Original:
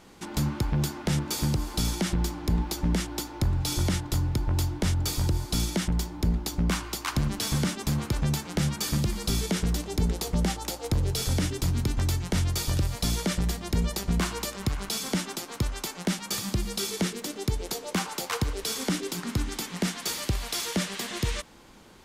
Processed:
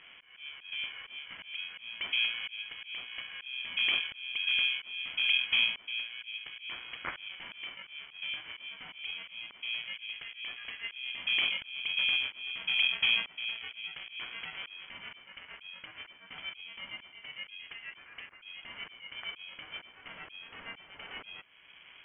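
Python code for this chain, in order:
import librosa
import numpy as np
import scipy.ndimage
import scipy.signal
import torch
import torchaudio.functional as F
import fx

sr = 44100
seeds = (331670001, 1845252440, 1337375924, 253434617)

y = fx.auto_swell(x, sr, attack_ms=679.0)
y = fx.freq_invert(y, sr, carrier_hz=2900)
y = fx.tilt_eq(y, sr, slope=1.5)
y = y * np.sin(2.0 * np.pi * 370.0 * np.arange(len(y)) / sr)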